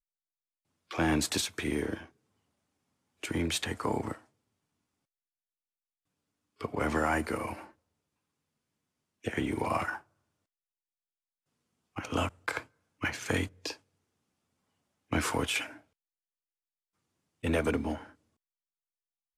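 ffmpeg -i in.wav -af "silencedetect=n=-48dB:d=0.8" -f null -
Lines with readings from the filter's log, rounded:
silence_start: 0.00
silence_end: 0.91 | silence_duration: 0.91
silence_start: 2.06
silence_end: 3.23 | silence_duration: 1.17
silence_start: 4.19
silence_end: 6.61 | silence_duration: 2.42
silence_start: 7.71
silence_end: 9.24 | silence_duration: 1.54
silence_start: 10.01
silence_end: 11.96 | silence_duration: 1.95
silence_start: 13.76
silence_end: 15.11 | silence_duration: 1.36
silence_start: 15.78
silence_end: 17.43 | silence_duration: 1.66
silence_start: 18.11
silence_end: 19.37 | silence_duration: 1.26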